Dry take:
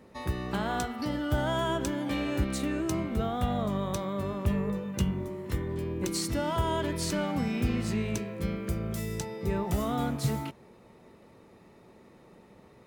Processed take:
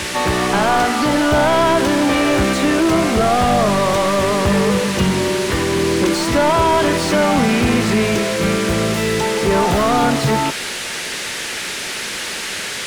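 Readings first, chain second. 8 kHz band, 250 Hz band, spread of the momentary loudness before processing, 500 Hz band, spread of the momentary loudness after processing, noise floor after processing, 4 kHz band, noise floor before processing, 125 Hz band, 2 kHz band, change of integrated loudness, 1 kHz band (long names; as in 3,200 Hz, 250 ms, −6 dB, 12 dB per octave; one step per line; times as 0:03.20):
+17.0 dB, +14.0 dB, 5 LU, +17.5 dB, 8 LU, −26 dBFS, +19.0 dB, −56 dBFS, +9.5 dB, +20.0 dB, +15.0 dB, +18.5 dB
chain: noise in a band 1,500–11,000 Hz −42 dBFS
mid-hump overdrive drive 26 dB, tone 1,400 Hz, clips at −14 dBFS
echo ahead of the sound 264 ms −13 dB
level +9 dB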